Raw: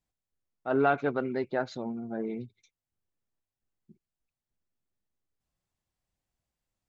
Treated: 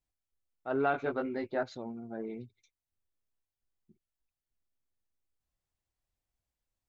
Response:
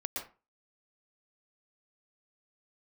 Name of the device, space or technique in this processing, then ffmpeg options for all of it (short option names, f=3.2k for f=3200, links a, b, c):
low shelf boost with a cut just above: -filter_complex "[0:a]asettb=1/sr,asplit=3[a][b][c];[a]atrim=end=0.924[d];[b]atrim=start=0.92:end=1.63,asetpts=PTS-STARTPTS,afade=t=in:d=0.004:c=qsin,afade=t=out:st=0.706:d=0.004:c=qsin,asplit=2[e][f];[f]adelay=19,volume=-3dB[g];[e][g]amix=inputs=2:normalize=0,atrim=end_sample=31311[h];[c]atrim=start=1.626[i];[d][h]acrossfade=d=0.004:c1=hsin:c2=qsin[j];[j][i]acrossfade=d=0.004:c1=qsin:c2=hsin,lowshelf=f=81:g=6,equalizer=f=170:t=o:w=0.83:g=-5.5,volume=-4.5dB"